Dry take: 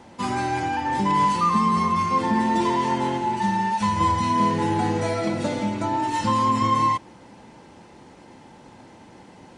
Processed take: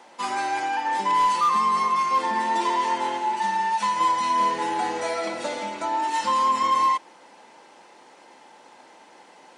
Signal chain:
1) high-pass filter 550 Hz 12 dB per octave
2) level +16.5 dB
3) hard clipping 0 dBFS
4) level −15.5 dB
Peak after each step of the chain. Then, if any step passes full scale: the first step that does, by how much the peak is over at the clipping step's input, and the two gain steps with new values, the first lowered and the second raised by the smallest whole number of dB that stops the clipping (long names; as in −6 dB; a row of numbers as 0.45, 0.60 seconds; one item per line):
−12.5, +4.0, 0.0, −15.5 dBFS
step 2, 4.0 dB
step 2 +12.5 dB, step 4 −11.5 dB